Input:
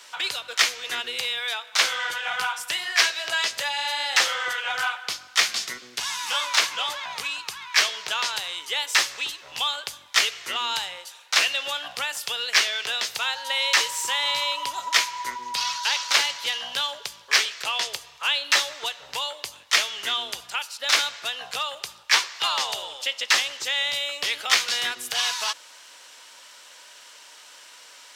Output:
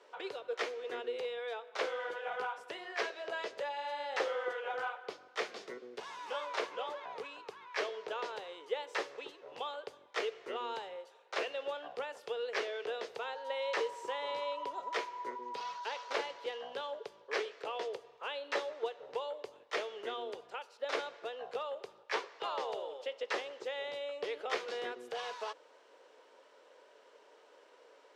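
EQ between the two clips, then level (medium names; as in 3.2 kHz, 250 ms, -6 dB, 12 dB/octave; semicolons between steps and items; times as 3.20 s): band-pass filter 440 Hz, Q 3.8; +7.0 dB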